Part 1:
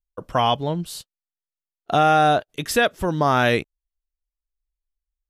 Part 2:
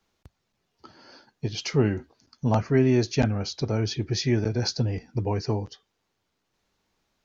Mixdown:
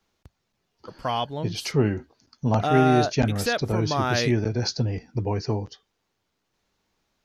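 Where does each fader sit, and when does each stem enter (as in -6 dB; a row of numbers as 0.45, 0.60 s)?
-7.0, +0.5 dB; 0.70, 0.00 s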